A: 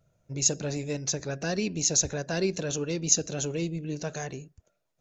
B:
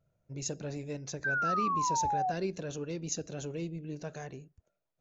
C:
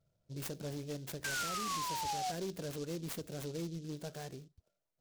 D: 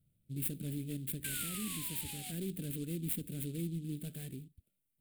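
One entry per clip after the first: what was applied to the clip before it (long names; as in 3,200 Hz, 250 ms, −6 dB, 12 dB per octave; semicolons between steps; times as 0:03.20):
high-shelf EQ 4,000 Hz −10.5 dB; sound drawn into the spectrogram fall, 0:01.24–0:02.32, 710–1,600 Hz −24 dBFS; level −6.5 dB
brickwall limiter −27.5 dBFS, peak gain reduction 8 dB; gain into a clipping stage and back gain 31.5 dB; short delay modulated by noise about 4,600 Hz, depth 0.079 ms; level −2.5 dB
drawn EQ curve 140 Hz 0 dB, 260 Hz +3 dB, 540 Hz −16 dB, 910 Hz −26 dB, 2,400 Hz −3 dB, 3,600 Hz −4 dB, 5,900 Hz −21 dB, 8,600 Hz +4 dB, 14,000 Hz +6 dB; level +3.5 dB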